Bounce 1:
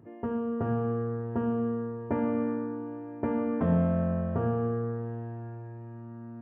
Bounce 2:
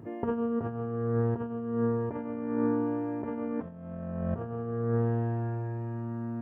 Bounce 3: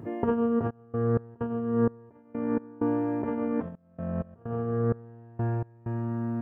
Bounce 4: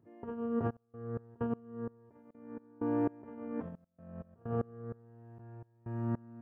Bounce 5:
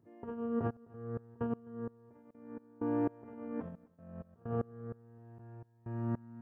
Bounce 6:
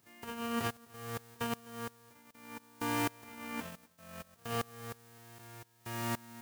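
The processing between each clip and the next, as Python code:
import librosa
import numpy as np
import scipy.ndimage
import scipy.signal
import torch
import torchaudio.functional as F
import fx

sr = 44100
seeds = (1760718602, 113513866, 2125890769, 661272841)

y1 = fx.over_compress(x, sr, threshold_db=-33.0, ratio=-0.5)
y1 = F.gain(torch.from_numpy(y1), 3.5).numpy()
y2 = fx.step_gate(y1, sr, bpm=64, pattern='xxx.x.xx..x.x', floor_db=-24.0, edge_ms=4.5)
y2 = F.gain(torch.from_numpy(y2), 4.5).numpy()
y3 = fx.tremolo_decay(y2, sr, direction='swelling', hz=1.3, depth_db=26)
y4 = y3 + 10.0 ** (-24.0 / 20.0) * np.pad(y3, (int(257 * sr / 1000.0), 0))[:len(y3)]
y4 = F.gain(torch.from_numpy(y4), -1.0).numpy()
y5 = fx.envelope_flatten(y4, sr, power=0.3)
y5 = F.gain(torch.from_numpy(y5), -1.0).numpy()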